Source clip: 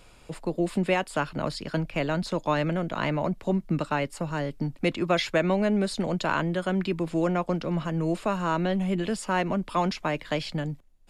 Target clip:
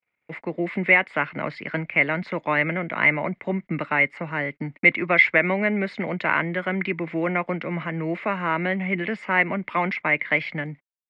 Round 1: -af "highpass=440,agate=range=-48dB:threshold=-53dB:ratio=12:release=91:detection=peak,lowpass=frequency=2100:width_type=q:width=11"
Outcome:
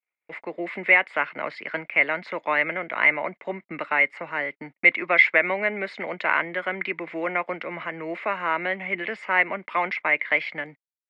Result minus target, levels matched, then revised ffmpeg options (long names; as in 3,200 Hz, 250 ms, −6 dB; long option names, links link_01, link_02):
125 Hz band −14.0 dB
-af "highpass=140,agate=range=-48dB:threshold=-53dB:ratio=12:release=91:detection=peak,lowpass=frequency=2100:width_type=q:width=11"